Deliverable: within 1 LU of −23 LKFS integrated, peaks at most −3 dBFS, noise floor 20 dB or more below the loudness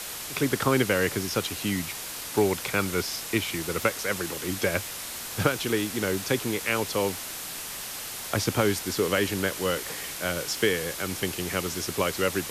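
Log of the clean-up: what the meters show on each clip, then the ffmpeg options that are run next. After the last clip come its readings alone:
background noise floor −37 dBFS; target noise floor −48 dBFS; integrated loudness −27.5 LKFS; sample peak −8.5 dBFS; target loudness −23.0 LKFS
→ -af "afftdn=noise_reduction=11:noise_floor=-37"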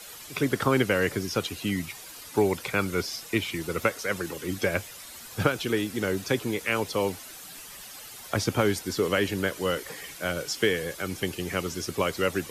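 background noise floor −44 dBFS; target noise floor −48 dBFS
→ -af "afftdn=noise_reduction=6:noise_floor=-44"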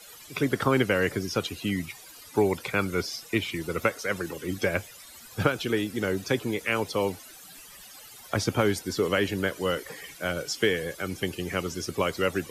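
background noise floor −48 dBFS; integrated loudness −28.0 LKFS; sample peak −8.5 dBFS; target loudness −23.0 LKFS
→ -af "volume=5dB"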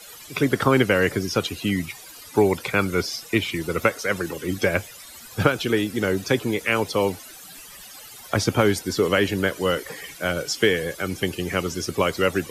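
integrated loudness −23.0 LKFS; sample peak −3.5 dBFS; background noise floor −43 dBFS

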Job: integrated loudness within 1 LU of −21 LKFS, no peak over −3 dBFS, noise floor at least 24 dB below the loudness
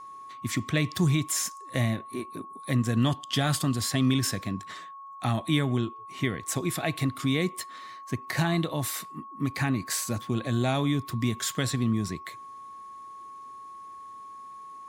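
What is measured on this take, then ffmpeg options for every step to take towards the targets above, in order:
interfering tone 1,100 Hz; level of the tone −41 dBFS; integrated loudness −28.5 LKFS; sample peak −11.5 dBFS; target loudness −21.0 LKFS
→ -af "bandreject=frequency=1100:width=30"
-af "volume=7.5dB"

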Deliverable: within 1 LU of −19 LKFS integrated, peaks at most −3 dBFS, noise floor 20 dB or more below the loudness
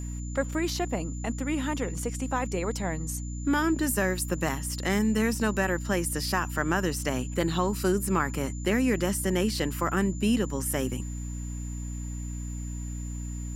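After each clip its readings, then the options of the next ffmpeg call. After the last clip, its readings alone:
mains hum 60 Hz; hum harmonics up to 300 Hz; level of the hum −32 dBFS; interfering tone 7,100 Hz; level of the tone −45 dBFS; integrated loudness −29.0 LKFS; sample peak −11.0 dBFS; target loudness −19.0 LKFS
→ -af "bandreject=frequency=60:width_type=h:width=6,bandreject=frequency=120:width_type=h:width=6,bandreject=frequency=180:width_type=h:width=6,bandreject=frequency=240:width_type=h:width=6,bandreject=frequency=300:width_type=h:width=6"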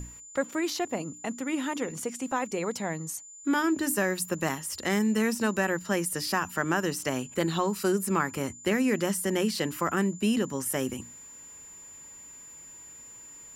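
mains hum none found; interfering tone 7,100 Hz; level of the tone −45 dBFS
→ -af "bandreject=frequency=7100:width=30"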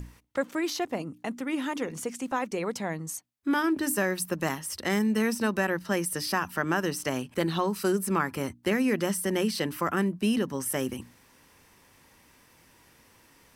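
interfering tone none found; integrated loudness −29.0 LKFS; sample peak −12.0 dBFS; target loudness −19.0 LKFS
→ -af "volume=10dB,alimiter=limit=-3dB:level=0:latency=1"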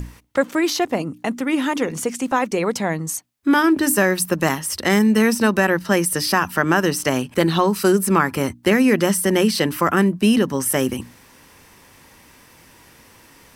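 integrated loudness −19.0 LKFS; sample peak −3.0 dBFS; background noise floor −50 dBFS

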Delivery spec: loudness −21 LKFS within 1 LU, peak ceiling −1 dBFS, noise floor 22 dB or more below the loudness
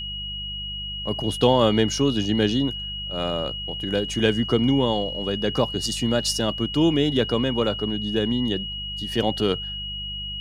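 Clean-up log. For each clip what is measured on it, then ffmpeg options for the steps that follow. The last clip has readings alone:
mains hum 50 Hz; hum harmonics up to 200 Hz; level of the hum −35 dBFS; interfering tone 2,900 Hz; level of the tone −30 dBFS; integrated loudness −23.5 LKFS; sample peak −4.0 dBFS; target loudness −21.0 LKFS
→ -af "bandreject=frequency=50:width_type=h:width=4,bandreject=frequency=100:width_type=h:width=4,bandreject=frequency=150:width_type=h:width=4,bandreject=frequency=200:width_type=h:width=4"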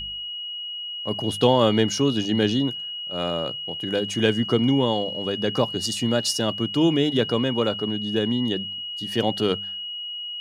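mains hum none found; interfering tone 2,900 Hz; level of the tone −30 dBFS
→ -af "bandreject=frequency=2900:width=30"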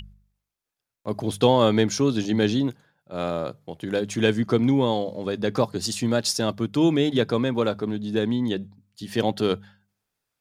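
interfering tone none found; integrated loudness −24.0 LKFS; sample peak −4.5 dBFS; target loudness −21.0 LKFS
→ -af "volume=3dB"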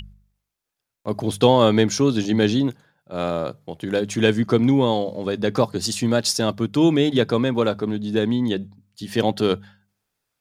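integrated loudness −21.0 LKFS; sample peak −1.5 dBFS; background noise floor −83 dBFS

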